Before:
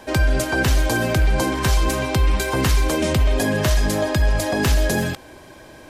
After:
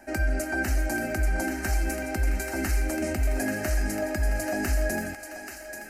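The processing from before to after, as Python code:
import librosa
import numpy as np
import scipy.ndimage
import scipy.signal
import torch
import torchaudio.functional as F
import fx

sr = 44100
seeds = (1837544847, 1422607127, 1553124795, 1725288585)

y = fx.fixed_phaser(x, sr, hz=700.0, stages=8)
y = fx.echo_thinned(y, sr, ms=834, feedback_pct=50, hz=900.0, wet_db=-6.5)
y = y * 10.0 ** (-6.0 / 20.0)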